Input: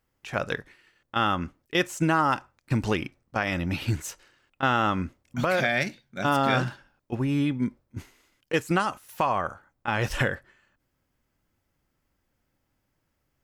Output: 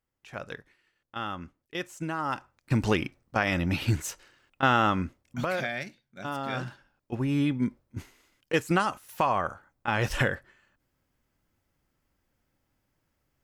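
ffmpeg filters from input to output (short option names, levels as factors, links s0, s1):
-af "volume=3.55,afade=t=in:st=2.17:d=0.68:silence=0.281838,afade=t=out:st=4.76:d=1.09:silence=0.266073,afade=t=in:st=6.46:d=1:silence=0.316228"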